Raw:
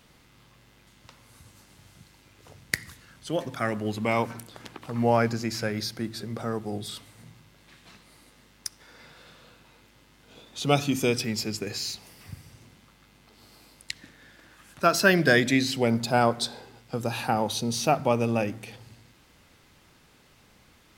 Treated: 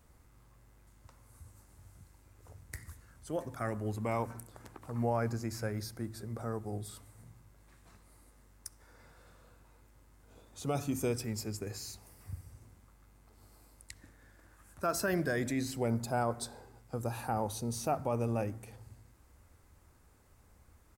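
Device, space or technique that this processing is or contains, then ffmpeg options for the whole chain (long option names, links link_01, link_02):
car stereo with a boomy subwoofer: -af "lowshelf=frequency=110:width_type=q:width=1.5:gain=9,alimiter=limit=-13.5dB:level=0:latency=1:release=15,firequalizer=gain_entry='entry(1100,0);entry(3100,-13);entry(7900,2)':delay=0.05:min_phase=1,volume=-7dB"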